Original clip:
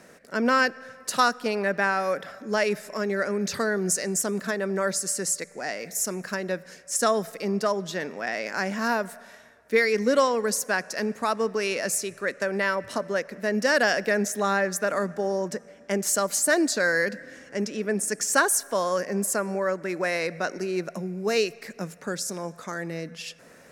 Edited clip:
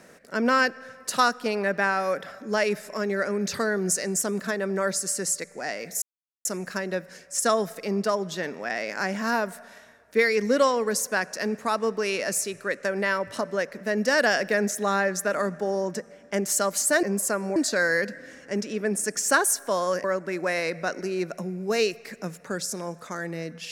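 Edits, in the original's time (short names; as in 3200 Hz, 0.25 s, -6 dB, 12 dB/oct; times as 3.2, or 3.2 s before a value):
6.02 insert silence 0.43 s
19.08–19.61 move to 16.6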